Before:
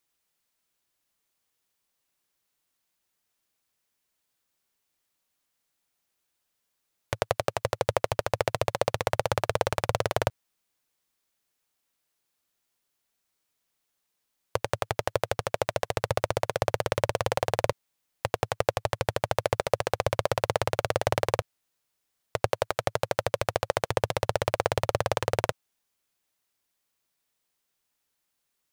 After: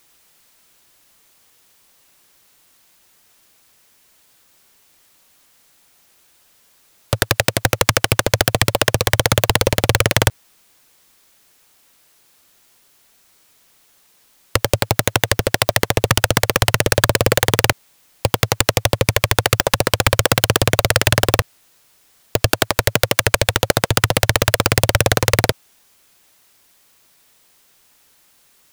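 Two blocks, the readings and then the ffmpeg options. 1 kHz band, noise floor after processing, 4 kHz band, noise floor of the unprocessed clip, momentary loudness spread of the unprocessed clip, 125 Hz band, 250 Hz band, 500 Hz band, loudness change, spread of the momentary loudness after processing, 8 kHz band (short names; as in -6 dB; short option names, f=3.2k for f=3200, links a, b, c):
+8.0 dB, -56 dBFS, +17.5 dB, -80 dBFS, 4 LU, +14.5 dB, +16.0 dB, +7.5 dB, +12.5 dB, 5 LU, +19.5 dB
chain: -af "aeval=exprs='(mod(6.31*val(0)+1,2)-1)/6.31':c=same,alimiter=level_in=24.5dB:limit=-1dB:release=50:level=0:latency=1,volume=-1dB"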